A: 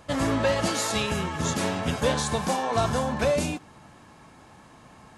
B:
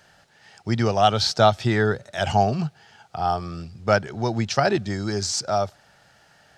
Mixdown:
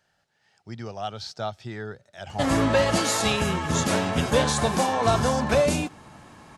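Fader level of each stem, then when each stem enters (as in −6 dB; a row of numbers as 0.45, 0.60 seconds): +3.0, −14.5 decibels; 2.30, 0.00 seconds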